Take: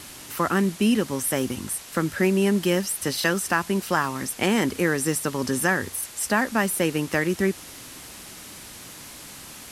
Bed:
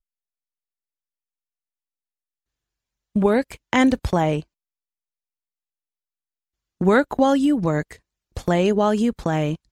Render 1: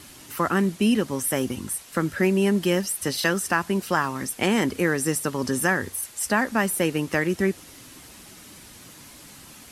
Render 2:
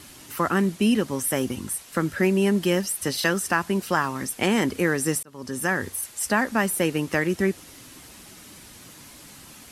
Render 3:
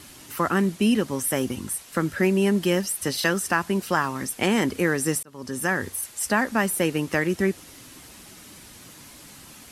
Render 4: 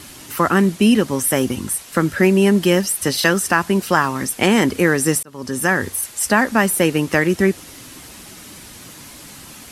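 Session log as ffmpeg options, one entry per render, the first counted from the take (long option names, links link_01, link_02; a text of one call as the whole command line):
ffmpeg -i in.wav -af "afftdn=noise_reduction=6:noise_floor=-42" out.wav
ffmpeg -i in.wav -filter_complex "[0:a]asplit=2[link_01][link_02];[link_01]atrim=end=5.23,asetpts=PTS-STARTPTS,afade=type=out:start_time=5.226:duration=0.004:curve=hsin[link_03];[link_02]atrim=start=5.23,asetpts=PTS-STARTPTS,afade=type=in:duration=0.6[link_04];[link_03][link_04]concat=n=2:v=0:a=1" out.wav
ffmpeg -i in.wav -af anull out.wav
ffmpeg -i in.wav -af "volume=7dB,alimiter=limit=-1dB:level=0:latency=1" out.wav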